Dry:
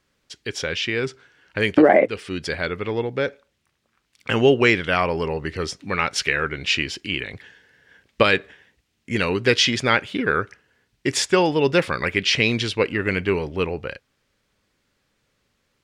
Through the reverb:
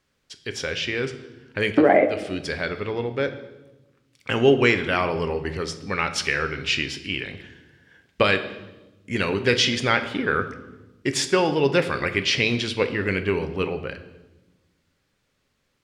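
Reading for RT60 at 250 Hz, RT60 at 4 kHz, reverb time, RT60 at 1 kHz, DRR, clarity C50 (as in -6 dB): 1.6 s, 1.0 s, 1.1 s, 1.0 s, 8.5 dB, 12.0 dB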